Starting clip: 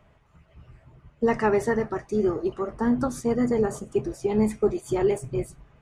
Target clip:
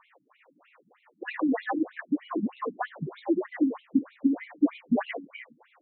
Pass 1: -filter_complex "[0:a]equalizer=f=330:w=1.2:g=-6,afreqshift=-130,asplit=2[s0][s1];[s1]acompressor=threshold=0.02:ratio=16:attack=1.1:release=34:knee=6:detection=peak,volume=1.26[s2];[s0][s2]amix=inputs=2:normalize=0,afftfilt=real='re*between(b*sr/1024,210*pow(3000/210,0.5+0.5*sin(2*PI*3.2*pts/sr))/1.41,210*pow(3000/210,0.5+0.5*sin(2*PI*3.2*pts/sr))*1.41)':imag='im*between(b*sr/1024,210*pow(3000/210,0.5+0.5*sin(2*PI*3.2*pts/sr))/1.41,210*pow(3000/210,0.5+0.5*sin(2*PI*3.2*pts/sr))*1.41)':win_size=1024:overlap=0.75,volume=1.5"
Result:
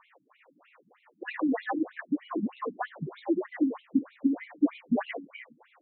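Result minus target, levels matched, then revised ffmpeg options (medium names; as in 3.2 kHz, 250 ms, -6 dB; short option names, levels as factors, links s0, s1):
compression: peak gain reduction +5.5 dB
-filter_complex "[0:a]equalizer=f=330:w=1.2:g=-6,afreqshift=-130,asplit=2[s0][s1];[s1]acompressor=threshold=0.0398:ratio=16:attack=1.1:release=34:knee=6:detection=peak,volume=1.26[s2];[s0][s2]amix=inputs=2:normalize=0,afftfilt=real='re*between(b*sr/1024,210*pow(3000/210,0.5+0.5*sin(2*PI*3.2*pts/sr))/1.41,210*pow(3000/210,0.5+0.5*sin(2*PI*3.2*pts/sr))*1.41)':imag='im*between(b*sr/1024,210*pow(3000/210,0.5+0.5*sin(2*PI*3.2*pts/sr))/1.41,210*pow(3000/210,0.5+0.5*sin(2*PI*3.2*pts/sr))*1.41)':win_size=1024:overlap=0.75,volume=1.5"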